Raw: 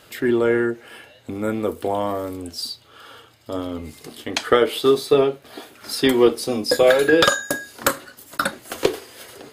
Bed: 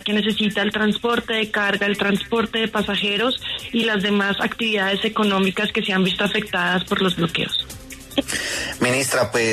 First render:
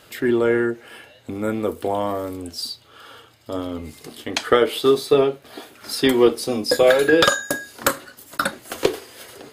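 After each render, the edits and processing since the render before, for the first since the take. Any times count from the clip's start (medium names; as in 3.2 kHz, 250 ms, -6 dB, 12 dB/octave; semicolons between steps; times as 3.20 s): no audible change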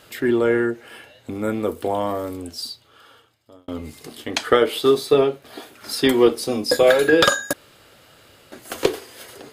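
2.38–3.68 s: fade out; 7.53–8.52 s: room tone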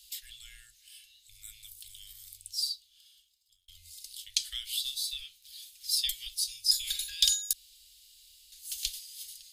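inverse Chebyshev band-stop 170–1000 Hz, stop band 70 dB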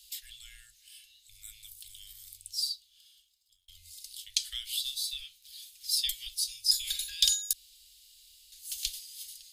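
elliptic band-stop 180–680 Hz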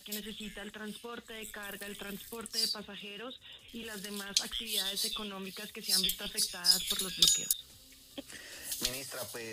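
add bed -24 dB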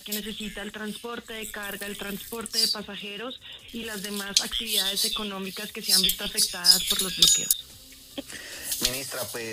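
trim +8.5 dB; peak limiter -2 dBFS, peak gain reduction 3 dB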